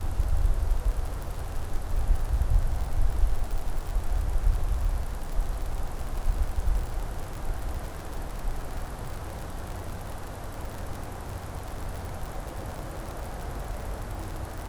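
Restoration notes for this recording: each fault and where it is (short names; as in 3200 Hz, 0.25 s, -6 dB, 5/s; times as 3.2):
crackle 58/s -31 dBFS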